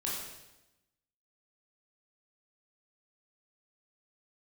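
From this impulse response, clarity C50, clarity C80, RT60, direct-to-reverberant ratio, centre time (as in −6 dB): 1.0 dB, 3.5 dB, 1.0 s, −5.5 dB, 68 ms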